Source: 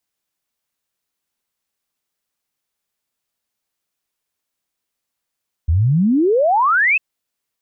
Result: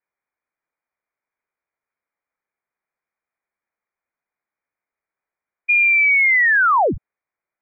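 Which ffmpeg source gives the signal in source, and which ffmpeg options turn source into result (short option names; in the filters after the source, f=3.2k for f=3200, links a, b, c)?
-f lavfi -i "aevalsrc='0.266*clip(min(t,1.3-t)/0.01,0,1)*sin(2*PI*74*1.3/log(2700/74)*(exp(log(2700/74)*t/1.3)-1))':d=1.3:s=44100"
-af "lowpass=f=2.1k:t=q:w=0.5098,lowpass=f=2.1k:t=q:w=0.6013,lowpass=f=2.1k:t=q:w=0.9,lowpass=f=2.1k:t=q:w=2.563,afreqshift=-2500"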